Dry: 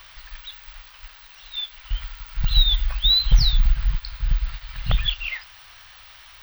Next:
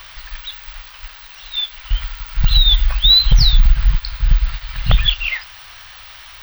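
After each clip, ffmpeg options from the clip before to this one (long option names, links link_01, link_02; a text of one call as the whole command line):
ffmpeg -i in.wav -af "alimiter=level_in=9dB:limit=-1dB:release=50:level=0:latency=1,volume=-1dB" out.wav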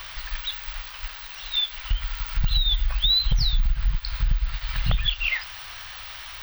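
ffmpeg -i in.wav -af "acompressor=threshold=-21dB:ratio=3" out.wav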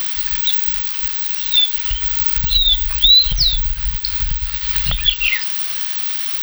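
ffmpeg -i in.wav -af "crystalizer=i=6:c=0" out.wav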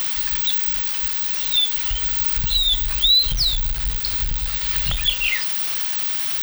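ffmpeg -i in.wav -af "aeval=exprs='val(0)+0.5*0.158*sgn(val(0))':channel_layout=same,volume=-7dB" out.wav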